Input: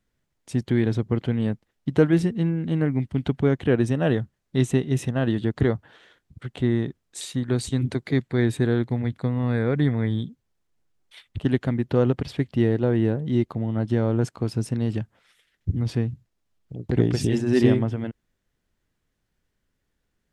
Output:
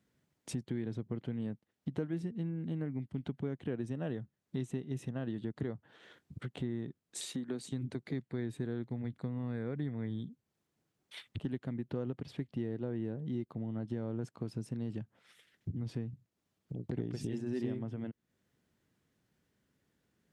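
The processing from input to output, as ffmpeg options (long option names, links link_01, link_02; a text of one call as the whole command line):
ffmpeg -i in.wav -filter_complex "[0:a]asettb=1/sr,asplit=3[link_01][link_02][link_03];[link_01]atrim=end=7.264[link_04];[link_02]atrim=start=7.26:end=7.72,asetpts=PTS-STARTPTS,afade=type=in:duration=0.004:curve=qsin,afade=type=out:start_time=0.456:duration=0.004:curve=qsin,highpass=frequency=170:width=0.5412,highpass=frequency=170:width=1.3066[link_05];[link_03]atrim=start=7.716[link_06];[link_04][link_05]acrossfade=duration=0.004:curve1=hsin:curve2=qsin[link_07];[link_07][link_06]acrossfade=duration=0.004:curve1=qsin:curve2=hsin,highpass=140,lowshelf=frequency=340:gain=8,acompressor=threshold=-40dB:ratio=3,volume=-1dB" out.wav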